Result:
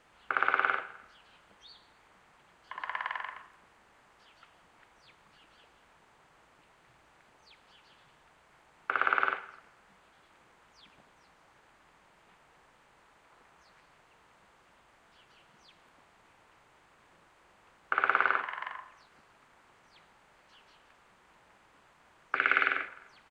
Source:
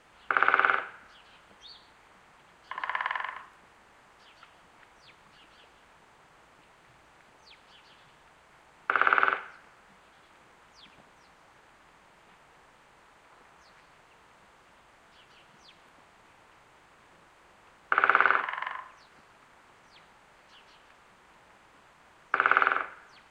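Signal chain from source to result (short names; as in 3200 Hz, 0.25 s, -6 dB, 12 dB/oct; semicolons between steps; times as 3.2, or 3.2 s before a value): 22.35–22.88 graphic EQ 250/1000/2000/4000 Hz +5/-11/+10/+4 dB; outdoor echo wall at 44 m, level -24 dB; gain -4.5 dB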